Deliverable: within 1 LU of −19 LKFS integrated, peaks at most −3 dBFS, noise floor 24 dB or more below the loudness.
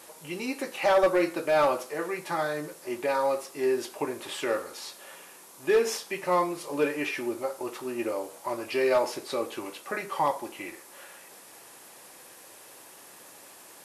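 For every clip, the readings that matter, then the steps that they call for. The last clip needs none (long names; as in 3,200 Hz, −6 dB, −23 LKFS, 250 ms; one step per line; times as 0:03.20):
share of clipped samples 0.3%; peaks flattened at −16.0 dBFS; background noise floor −50 dBFS; target noise floor −53 dBFS; integrated loudness −29.0 LKFS; sample peak −16.0 dBFS; target loudness −19.0 LKFS
→ clipped peaks rebuilt −16 dBFS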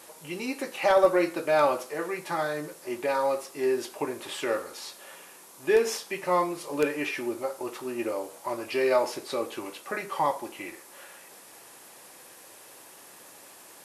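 share of clipped samples 0.0%; background noise floor −50 dBFS; target noise floor −53 dBFS
→ broadband denoise 6 dB, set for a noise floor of −50 dBFS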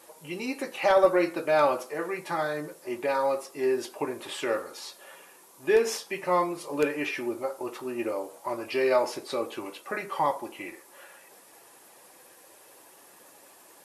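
background noise floor −55 dBFS; integrated loudness −28.5 LKFS; sample peak −8.5 dBFS; target loudness −19.0 LKFS
→ level +9.5 dB
brickwall limiter −3 dBFS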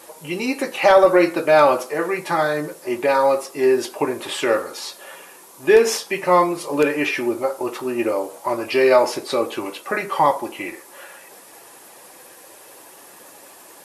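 integrated loudness −19.5 LKFS; sample peak −3.0 dBFS; background noise floor −45 dBFS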